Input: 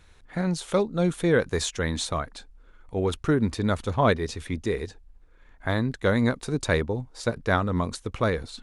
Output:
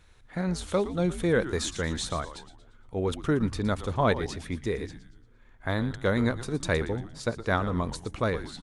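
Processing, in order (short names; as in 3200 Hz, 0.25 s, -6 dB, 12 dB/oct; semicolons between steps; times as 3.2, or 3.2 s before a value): frequency-shifting echo 0.116 s, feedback 43%, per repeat -130 Hz, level -12.5 dB; gain -3 dB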